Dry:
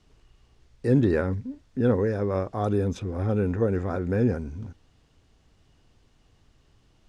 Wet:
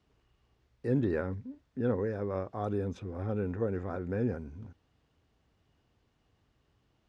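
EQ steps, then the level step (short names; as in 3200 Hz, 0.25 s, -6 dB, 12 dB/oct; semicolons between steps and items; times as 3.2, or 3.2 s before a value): HPF 52 Hz; low shelf 410 Hz -3 dB; high shelf 4400 Hz -11.5 dB; -6.0 dB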